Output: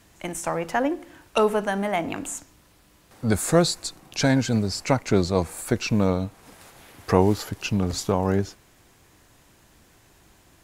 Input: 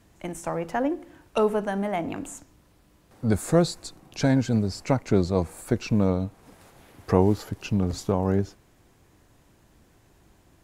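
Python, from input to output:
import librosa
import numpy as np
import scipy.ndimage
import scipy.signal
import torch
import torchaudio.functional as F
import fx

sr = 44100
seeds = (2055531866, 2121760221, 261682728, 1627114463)

y = fx.tilt_shelf(x, sr, db=-4.0, hz=930.0)
y = y * 10.0 ** (4.0 / 20.0)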